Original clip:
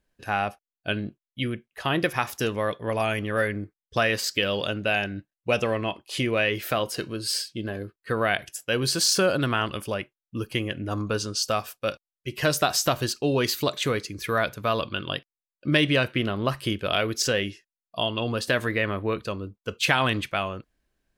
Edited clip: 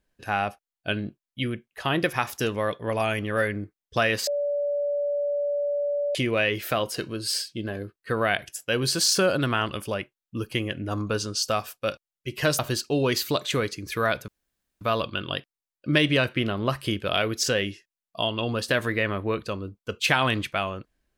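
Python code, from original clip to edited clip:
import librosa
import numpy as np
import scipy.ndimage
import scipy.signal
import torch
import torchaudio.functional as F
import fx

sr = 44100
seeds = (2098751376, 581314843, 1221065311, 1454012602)

y = fx.edit(x, sr, fx.bleep(start_s=4.27, length_s=1.88, hz=577.0, db=-23.0),
    fx.cut(start_s=12.59, length_s=0.32),
    fx.insert_room_tone(at_s=14.6, length_s=0.53), tone=tone)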